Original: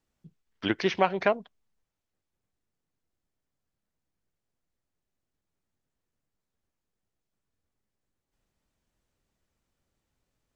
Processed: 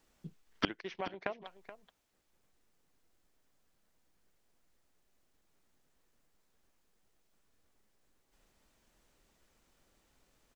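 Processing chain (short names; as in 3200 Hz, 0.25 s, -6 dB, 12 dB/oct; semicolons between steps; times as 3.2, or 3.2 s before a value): 0.81–1.39 gate -31 dBFS, range -22 dB; bell 100 Hz -8.5 dB 1.9 oct; flipped gate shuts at -23 dBFS, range -26 dB; on a send: echo 0.427 s -13.5 dB; on the sum: gain +10 dB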